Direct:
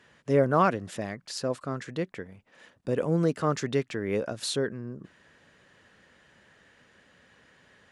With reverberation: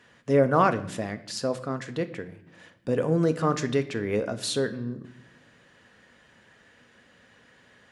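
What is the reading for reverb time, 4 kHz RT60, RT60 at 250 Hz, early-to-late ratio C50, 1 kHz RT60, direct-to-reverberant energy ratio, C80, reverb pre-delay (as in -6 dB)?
0.80 s, 0.70 s, 1.4 s, 15.0 dB, 0.70 s, 9.0 dB, 17.5 dB, 4 ms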